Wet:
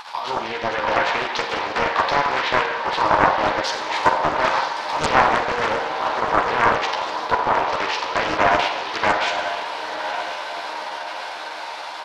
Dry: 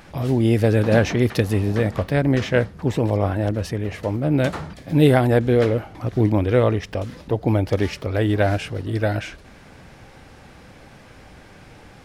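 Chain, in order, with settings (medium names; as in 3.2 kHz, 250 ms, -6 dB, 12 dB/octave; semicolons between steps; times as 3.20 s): low-pass that closes with the level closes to 2.3 kHz, closed at -16 dBFS; peaking EQ 4.1 kHz +13.5 dB 0.96 oct; level held to a coarse grid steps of 11 dB; resonant high-pass 950 Hz, resonance Q 8; doubling 13 ms -5 dB; echo that smears into a reverb 976 ms, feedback 61%, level -8 dB; Schroeder reverb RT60 0.99 s, combs from 32 ms, DRR 4 dB; loudspeaker Doppler distortion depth 0.69 ms; trim +5.5 dB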